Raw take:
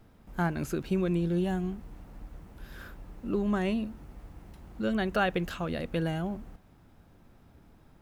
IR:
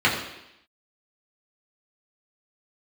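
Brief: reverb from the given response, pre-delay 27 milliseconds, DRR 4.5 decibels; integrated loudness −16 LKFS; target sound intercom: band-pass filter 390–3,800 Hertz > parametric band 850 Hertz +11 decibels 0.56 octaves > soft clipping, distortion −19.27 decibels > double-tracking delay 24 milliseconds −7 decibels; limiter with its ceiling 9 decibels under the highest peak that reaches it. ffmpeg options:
-filter_complex "[0:a]alimiter=limit=-24dB:level=0:latency=1,asplit=2[link_01][link_02];[1:a]atrim=start_sample=2205,adelay=27[link_03];[link_02][link_03]afir=irnorm=-1:irlink=0,volume=-23.5dB[link_04];[link_01][link_04]amix=inputs=2:normalize=0,highpass=390,lowpass=3800,equalizer=frequency=850:width_type=o:width=0.56:gain=11,asoftclip=threshold=-22.5dB,asplit=2[link_05][link_06];[link_06]adelay=24,volume=-7dB[link_07];[link_05][link_07]amix=inputs=2:normalize=0,volume=19.5dB"

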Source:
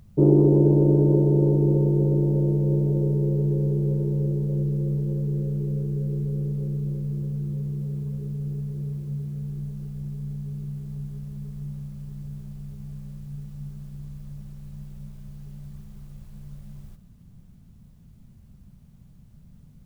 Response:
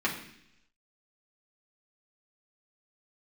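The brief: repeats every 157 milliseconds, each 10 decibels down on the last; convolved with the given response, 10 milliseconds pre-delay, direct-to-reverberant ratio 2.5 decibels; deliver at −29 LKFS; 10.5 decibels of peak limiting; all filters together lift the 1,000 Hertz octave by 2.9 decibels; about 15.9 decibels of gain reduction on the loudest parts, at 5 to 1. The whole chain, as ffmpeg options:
-filter_complex "[0:a]equalizer=frequency=1000:width_type=o:gain=3.5,acompressor=threshold=-31dB:ratio=5,alimiter=level_in=8dB:limit=-24dB:level=0:latency=1,volume=-8dB,aecho=1:1:157|314|471|628:0.316|0.101|0.0324|0.0104,asplit=2[link_01][link_02];[1:a]atrim=start_sample=2205,adelay=10[link_03];[link_02][link_03]afir=irnorm=-1:irlink=0,volume=-12.5dB[link_04];[link_01][link_04]amix=inputs=2:normalize=0,volume=9.5dB"

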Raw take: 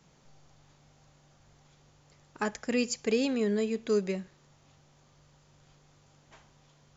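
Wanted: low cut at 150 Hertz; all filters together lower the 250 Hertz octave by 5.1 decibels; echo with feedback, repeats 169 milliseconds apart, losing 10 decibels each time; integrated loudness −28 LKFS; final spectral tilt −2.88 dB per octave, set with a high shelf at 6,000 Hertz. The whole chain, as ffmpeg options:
ffmpeg -i in.wav -af "highpass=150,equalizer=frequency=250:width_type=o:gain=-5,highshelf=frequency=6000:gain=8,aecho=1:1:169|338|507|676:0.316|0.101|0.0324|0.0104,volume=3.5dB" out.wav

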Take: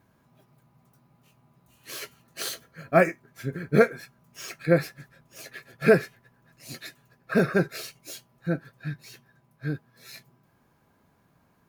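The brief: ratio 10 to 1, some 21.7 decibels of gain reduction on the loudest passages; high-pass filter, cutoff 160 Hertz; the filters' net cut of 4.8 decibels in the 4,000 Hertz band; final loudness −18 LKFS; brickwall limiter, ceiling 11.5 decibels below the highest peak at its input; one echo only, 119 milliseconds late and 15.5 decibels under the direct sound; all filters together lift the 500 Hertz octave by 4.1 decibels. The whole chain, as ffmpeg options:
ffmpeg -i in.wav -af "highpass=160,equalizer=frequency=500:width_type=o:gain=5,equalizer=frequency=4000:width_type=o:gain=-6,acompressor=threshold=-32dB:ratio=10,alimiter=level_in=9.5dB:limit=-24dB:level=0:latency=1,volume=-9.5dB,aecho=1:1:119:0.168,volume=28dB" out.wav

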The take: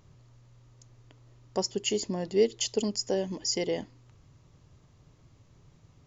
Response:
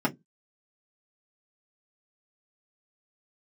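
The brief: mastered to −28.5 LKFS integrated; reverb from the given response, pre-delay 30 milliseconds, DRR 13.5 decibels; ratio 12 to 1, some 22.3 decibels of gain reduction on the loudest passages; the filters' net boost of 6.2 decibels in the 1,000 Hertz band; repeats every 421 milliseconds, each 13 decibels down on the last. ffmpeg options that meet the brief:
-filter_complex "[0:a]equalizer=frequency=1000:width_type=o:gain=8.5,acompressor=threshold=-40dB:ratio=12,aecho=1:1:421|842|1263:0.224|0.0493|0.0108,asplit=2[link_01][link_02];[1:a]atrim=start_sample=2205,adelay=30[link_03];[link_02][link_03]afir=irnorm=-1:irlink=0,volume=-24.5dB[link_04];[link_01][link_04]amix=inputs=2:normalize=0,volume=17dB"

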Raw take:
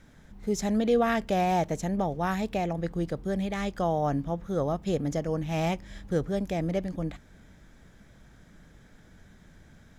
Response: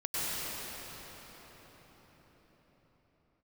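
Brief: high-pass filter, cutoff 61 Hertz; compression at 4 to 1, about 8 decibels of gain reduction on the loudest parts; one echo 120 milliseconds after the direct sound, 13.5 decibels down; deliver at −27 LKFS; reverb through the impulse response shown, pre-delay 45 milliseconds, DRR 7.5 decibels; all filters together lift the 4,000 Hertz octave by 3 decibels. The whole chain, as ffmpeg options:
-filter_complex "[0:a]highpass=61,equalizer=frequency=4000:width_type=o:gain=4,acompressor=threshold=-29dB:ratio=4,aecho=1:1:120:0.211,asplit=2[link_01][link_02];[1:a]atrim=start_sample=2205,adelay=45[link_03];[link_02][link_03]afir=irnorm=-1:irlink=0,volume=-16dB[link_04];[link_01][link_04]amix=inputs=2:normalize=0,volume=5.5dB"

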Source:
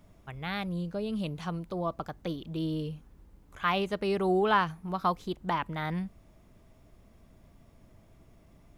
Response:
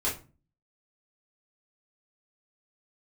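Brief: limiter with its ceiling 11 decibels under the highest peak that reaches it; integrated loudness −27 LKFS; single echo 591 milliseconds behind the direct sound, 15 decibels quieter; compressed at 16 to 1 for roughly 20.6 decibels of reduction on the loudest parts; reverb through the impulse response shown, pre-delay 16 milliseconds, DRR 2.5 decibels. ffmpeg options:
-filter_complex "[0:a]acompressor=threshold=-42dB:ratio=16,alimiter=level_in=14.5dB:limit=-24dB:level=0:latency=1,volume=-14.5dB,aecho=1:1:591:0.178,asplit=2[link_01][link_02];[1:a]atrim=start_sample=2205,adelay=16[link_03];[link_02][link_03]afir=irnorm=-1:irlink=0,volume=-10.5dB[link_04];[link_01][link_04]amix=inputs=2:normalize=0,volume=20dB"

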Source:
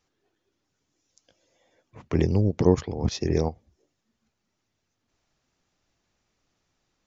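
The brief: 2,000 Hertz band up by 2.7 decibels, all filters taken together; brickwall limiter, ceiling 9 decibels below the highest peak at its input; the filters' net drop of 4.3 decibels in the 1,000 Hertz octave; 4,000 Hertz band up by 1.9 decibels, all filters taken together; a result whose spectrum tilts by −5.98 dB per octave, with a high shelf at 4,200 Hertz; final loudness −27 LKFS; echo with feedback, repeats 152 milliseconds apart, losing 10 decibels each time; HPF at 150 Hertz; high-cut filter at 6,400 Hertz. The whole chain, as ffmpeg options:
ffmpeg -i in.wav -af "highpass=150,lowpass=6400,equalizer=frequency=1000:width_type=o:gain=-6.5,equalizer=frequency=2000:width_type=o:gain=4.5,equalizer=frequency=4000:width_type=o:gain=8,highshelf=frequency=4200:gain=-8.5,alimiter=limit=-16.5dB:level=0:latency=1,aecho=1:1:152|304|456|608:0.316|0.101|0.0324|0.0104,volume=3dB" out.wav

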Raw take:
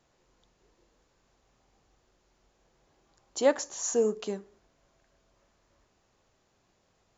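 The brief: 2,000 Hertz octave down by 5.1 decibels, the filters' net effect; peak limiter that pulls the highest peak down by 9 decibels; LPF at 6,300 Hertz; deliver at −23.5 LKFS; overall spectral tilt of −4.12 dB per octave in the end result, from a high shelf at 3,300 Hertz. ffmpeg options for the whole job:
ffmpeg -i in.wav -af "lowpass=6300,equalizer=frequency=2000:width_type=o:gain=-4.5,highshelf=frequency=3300:gain=-5.5,volume=10dB,alimiter=limit=-10.5dB:level=0:latency=1" out.wav

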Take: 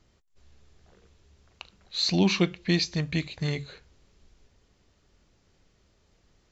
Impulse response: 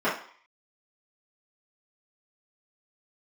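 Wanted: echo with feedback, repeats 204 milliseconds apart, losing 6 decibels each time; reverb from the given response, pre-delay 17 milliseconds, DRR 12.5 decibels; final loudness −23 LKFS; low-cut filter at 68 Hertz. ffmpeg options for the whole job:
-filter_complex "[0:a]highpass=68,aecho=1:1:204|408|612|816|1020|1224:0.501|0.251|0.125|0.0626|0.0313|0.0157,asplit=2[link_01][link_02];[1:a]atrim=start_sample=2205,adelay=17[link_03];[link_02][link_03]afir=irnorm=-1:irlink=0,volume=-27.5dB[link_04];[link_01][link_04]amix=inputs=2:normalize=0,volume=3dB"

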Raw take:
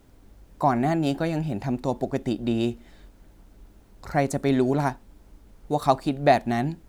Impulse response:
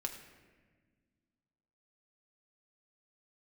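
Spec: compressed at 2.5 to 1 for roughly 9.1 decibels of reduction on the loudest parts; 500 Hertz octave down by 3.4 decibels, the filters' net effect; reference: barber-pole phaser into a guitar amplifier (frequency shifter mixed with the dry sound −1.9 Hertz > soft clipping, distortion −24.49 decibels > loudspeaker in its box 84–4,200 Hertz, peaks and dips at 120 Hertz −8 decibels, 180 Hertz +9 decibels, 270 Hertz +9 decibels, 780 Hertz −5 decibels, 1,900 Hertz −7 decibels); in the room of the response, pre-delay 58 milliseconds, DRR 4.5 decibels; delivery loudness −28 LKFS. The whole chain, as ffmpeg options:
-filter_complex "[0:a]equalizer=frequency=500:width_type=o:gain=-4.5,acompressor=threshold=-29dB:ratio=2.5,asplit=2[link_01][link_02];[1:a]atrim=start_sample=2205,adelay=58[link_03];[link_02][link_03]afir=irnorm=-1:irlink=0,volume=-4.5dB[link_04];[link_01][link_04]amix=inputs=2:normalize=0,asplit=2[link_05][link_06];[link_06]afreqshift=-1.9[link_07];[link_05][link_07]amix=inputs=2:normalize=1,asoftclip=threshold=-21dB,highpass=84,equalizer=frequency=120:width_type=q:width=4:gain=-8,equalizer=frequency=180:width_type=q:width=4:gain=9,equalizer=frequency=270:width_type=q:width=4:gain=9,equalizer=frequency=780:width_type=q:width=4:gain=-5,equalizer=frequency=1900:width_type=q:width=4:gain=-7,lowpass=frequency=4200:width=0.5412,lowpass=frequency=4200:width=1.3066,volume=3dB"

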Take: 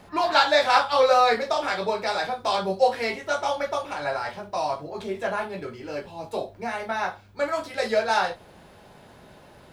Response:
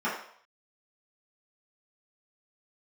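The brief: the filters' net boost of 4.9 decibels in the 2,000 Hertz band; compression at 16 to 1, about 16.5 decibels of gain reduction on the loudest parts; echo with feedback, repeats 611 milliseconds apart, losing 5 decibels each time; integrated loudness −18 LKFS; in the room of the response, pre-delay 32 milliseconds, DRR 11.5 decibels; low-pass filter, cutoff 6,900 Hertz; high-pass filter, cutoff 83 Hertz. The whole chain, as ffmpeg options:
-filter_complex "[0:a]highpass=83,lowpass=6900,equalizer=frequency=2000:width_type=o:gain=6.5,acompressor=threshold=-29dB:ratio=16,aecho=1:1:611|1222|1833|2444|3055|3666|4277:0.562|0.315|0.176|0.0988|0.0553|0.031|0.0173,asplit=2[link_01][link_02];[1:a]atrim=start_sample=2205,adelay=32[link_03];[link_02][link_03]afir=irnorm=-1:irlink=0,volume=-23dB[link_04];[link_01][link_04]amix=inputs=2:normalize=0,volume=14.5dB"

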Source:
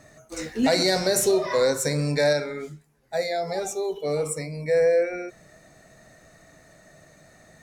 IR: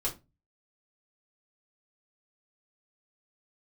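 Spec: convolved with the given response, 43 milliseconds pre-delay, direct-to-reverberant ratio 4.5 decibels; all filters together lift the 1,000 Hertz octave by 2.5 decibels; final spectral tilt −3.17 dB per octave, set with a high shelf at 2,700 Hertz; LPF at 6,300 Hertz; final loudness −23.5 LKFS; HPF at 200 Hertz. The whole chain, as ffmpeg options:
-filter_complex "[0:a]highpass=200,lowpass=6300,equalizer=frequency=1000:width_type=o:gain=3,highshelf=frequency=2700:gain=6,asplit=2[link_01][link_02];[1:a]atrim=start_sample=2205,adelay=43[link_03];[link_02][link_03]afir=irnorm=-1:irlink=0,volume=-9dB[link_04];[link_01][link_04]amix=inputs=2:normalize=0,volume=-1.5dB"

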